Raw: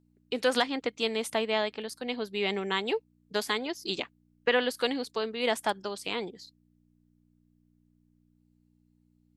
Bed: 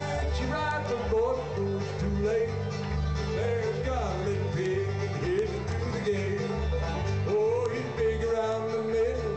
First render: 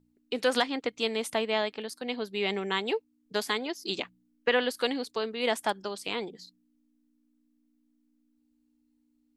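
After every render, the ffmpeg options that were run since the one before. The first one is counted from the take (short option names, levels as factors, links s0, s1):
-af "bandreject=f=60:t=h:w=4,bandreject=f=120:t=h:w=4,bandreject=f=180:t=h:w=4"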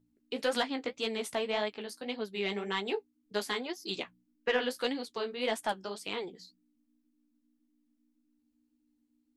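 -af "asoftclip=type=tanh:threshold=0.224,flanger=delay=9.3:depth=7.1:regen=-27:speed=1.8:shape=sinusoidal"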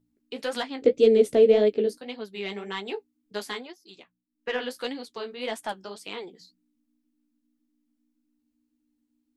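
-filter_complex "[0:a]asettb=1/sr,asplit=3[s0][s1][s2];[s0]atrim=end=0.824[s3];[s1]atrim=start=0.82:end=1.98,asetpts=PTS-STARTPTS,afade=t=in:d=0.004:c=qsin,afade=t=out:st=1.156:d=0.004:c=qsin,lowshelf=f=660:t=q:w=3:g=12[s4];[s2]atrim=start=1.976[s5];[s3][s4]acrossfade=d=0.004:c1=hsin:c2=qsin[s6];[s6][s5]acrossfade=d=0.004:c1=qsin:c2=hsin,asettb=1/sr,asplit=3[s7][s8][s9];[s7]atrim=end=5.964[s10];[s8]atrim=start=5.96:end=6.41,asetpts=PTS-STARTPTS,afade=t=in:d=0.004:c=qsin,afade=t=out:st=0.446:d=0.004:c=qsin,highpass=150[s11];[s9]atrim=start=6.406[s12];[s10][s11]acrossfade=d=0.004:c1=hsin:c2=qsin[s13];[s13][s12]acrossfade=d=0.004:c1=qsin:c2=hsin,asplit=3[s14][s15][s16];[s14]atrim=end=3.79,asetpts=PTS-STARTPTS,afade=t=out:st=3.55:d=0.24:silence=0.223872[s17];[s15]atrim=start=3.79:end=4.29,asetpts=PTS-STARTPTS,volume=0.224[s18];[s16]atrim=start=4.29,asetpts=PTS-STARTPTS,afade=t=in:d=0.24:silence=0.223872[s19];[s17][s18][s19]concat=n=3:v=0:a=1"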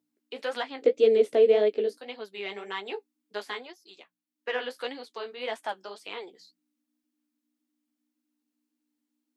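-filter_complex "[0:a]acrossover=split=3800[s0][s1];[s1]acompressor=threshold=0.00224:ratio=4:attack=1:release=60[s2];[s0][s2]amix=inputs=2:normalize=0,highpass=400"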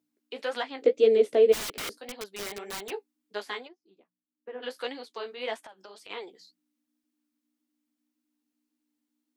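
-filter_complex "[0:a]asplit=3[s0][s1][s2];[s0]afade=t=out:st=1.52:d=0.02[s3];[s1]aeval=exprs='(mod(29.9*val(0)+1,2)-1)/29.9':c=same,afade=t=in:st=1.52:d=0.02,afade=t=out:st=2.89:d=0.02[s4];[s2]afade=t=in:st=2.89:d=0.02[s5];[s3][s4][s5]amix=inputs=3:normalize=0,asplit=3[s6][s7][s8];[s6]afade=t=out:st=3.67:d=0.02[s9];[s7]bandpass=f=190:t=q:w=1,afade=t=in:st=3.67:d=0.02,afade=t=out:st=4.62:d=0.02[s10];[s8]afade=t=in:st=4.62:d=0.02[s11];[s9][s10][s11]amix=inputs=3:normalize=0,asplit=3[s12][s13][s14];[s12]afade=t=out:st=5.6:d=0.02[s15];[s13]acompressor=threshold=0.00708:ratio=16:attack=3.2:release=140:knee=1:detection=peak,afade=t=in:st=5.6:d=0.02,afade=t=out:st=6.09:d=0.02[s16];[s14]afade=t=in:st=6.09:d=0.02[s17];[s15][s16][s17]amix=inputs=3:normalize=0"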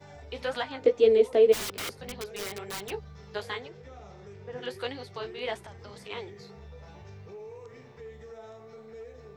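-filter_complex "[1:a]volume=0.126[s0];[0:a][s0]amix=inputs=2:normalize=0"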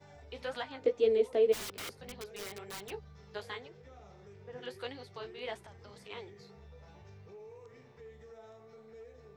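-af "volume=0.447"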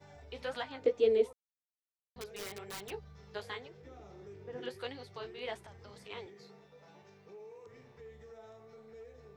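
-filter_complex "[0:a]asettb=1/sr,asplit=3[s0][s1][s2];[s0]atrim=end=3.824[s3];[s1]atrim=start=3.82:end=4.69,asetpts=PTS-STARTPTS,afade=t=in:d=0.004:c=qsin,afade=t=out:st=0.866:d=0.004:c=qsin,equalizer=f=320:t=o:w=0.52:g=13[s4];[s2]atrim=start=4.686[s5];[s3][s4]acrossfade=d=0.004:c1=hsin:c2=qsin[s6];[s6][s5]acrossfade=d=0.004:c1=qsin:c2=hsin,asettb=1/sr,asplit=3[s7][s8][s9];[s7]atrim=end=6.264[s10];[s8]atrim=start=6.26:end=7.67,asetpts=PTS-STARTPTS,afade=t=in:d=0.004:c=qsin,afade=t=out:st=1.406:d=0.004:c=qsin,highpass=f=160:w=0.5412,highpass=f=160:w=1.3066[s11];[s9]atrim=start=7.666[s12];[s10][s11]acrossfade=d=0.004:c1=hsin:c2=qsin[s13];[s13][s12]acrossfade=d=0.004:c1=qsin:c2=hsin,asplit=3[s14][s15][s16];[s14]atrim=end=1.33,asetpts=PTS-STARTPTS,afade=t=out:st=1.326:d=0.004:c=hsin[s17];[s15]atrim=start=1.33:end=2.16,asetpts=PTS-STARTPTS,volume=0[s18];[s16]atrim=start=2.16,asetpts=PTS-STARTPTS,afade=t=in:d=0.004:c=hsin[s19];[s17][s18][s19]concat=n=3:v=0:a=1"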